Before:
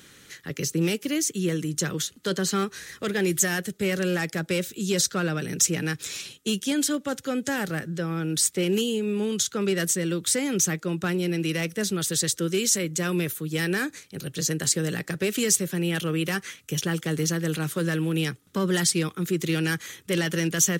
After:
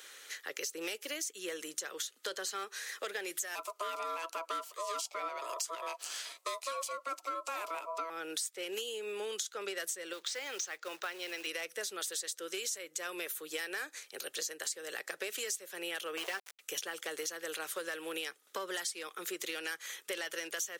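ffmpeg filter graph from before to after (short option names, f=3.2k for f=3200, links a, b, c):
-filter_complex "[0:a]asettb=1/sr,asplit=3[a][b][c];[a]atrim=end=3.554[d];[b]atrim=start=3.55:end=8.1,asetpts=PTS-STARTPTS,afade=t=in:d=0.004:c=qsin,afade=t=out:st=4.546:d=0.004:c=qsin,equalizer=f=510:w=6.8:g=12.5,aeval=exprs='val(0)*sin(2*PI*820*n/s)':c=same[e];[c]atrim=start=8.096[f];[d][e]acrossfade=d=0.004:c1=hsin:c2=qsin[g];[g][f]acrossfade=d=0.004:c1=qsin:c2=hsin,asettb=1/sr,asplit=3[h][i][j];[h]atrim=end=10.134[k];[i]atrim=start=10.13:end=11.47,asetpts=PTS-STARTPTS,afade=t=in:d=0.004:c=qsin,afade=t=out:st=1.336:d=0.004:c=qsin,lowpass=f=6k:w=0.5412,lowpass=f=6k:w=1.3066,lowshelf=f=450:g=-10,acrusher=bits=4:mode=log:mix=0:aa=0.000001[l];[j]atrim=start=11.466[m];[k][l]acrossfade=d=0.004:c1=hsin:c2=qsin[n];[n][m]acrossfade=d=0.004:c1=qsin:c2=hsin,asettb=1/sr,asplit=3[o][p][q];[o]atrim=end=16.174[r];[p]atrim=start=16.17:end=16.59,asetpts=PTS-STARTPTS,afade=t=in:d=0.004:c=qsin,afade=t=out:st=0.416:d=0.004:c=qsin,lowpass=6.6k,aecho=1:1:5.2:0.66,atrim=end_sample=18522,aeval=exprs='val(0)*gte(abs(val(0)),0.0376)':c=same[s];[q]atrim=start=16.586[t];[r][s]acrossfade=d=0.004:c1=hsin:c2=qsin[u];[u][t]acrossfade=d=0.004:c1=qsin:c2=hsin,highpass=f=490:w=0.5412,highpass=f=490:w=1.3066,acompressor=threshold=-36dB:ratio=6"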